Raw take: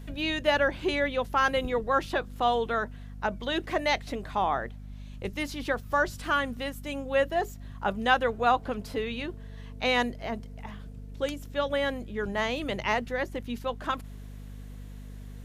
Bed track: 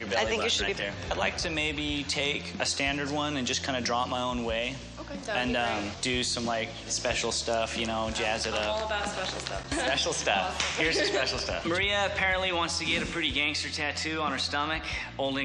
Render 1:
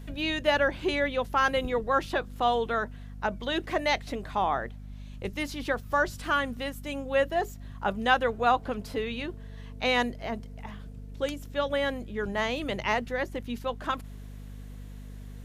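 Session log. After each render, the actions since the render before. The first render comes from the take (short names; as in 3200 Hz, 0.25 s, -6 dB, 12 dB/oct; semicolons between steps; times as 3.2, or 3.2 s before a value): nothing audible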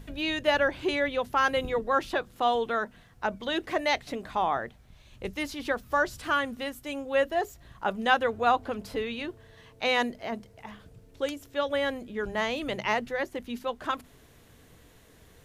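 notches 50/100/150/200/250 Hz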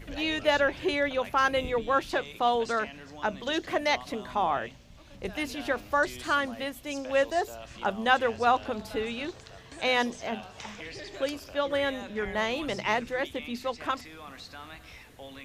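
add bed track -15.5 dB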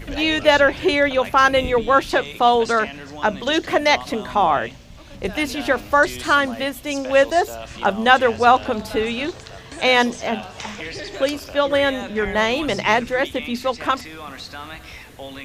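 gain +10 dB; limiter -1 dBFS, peak gain reduction 1 dB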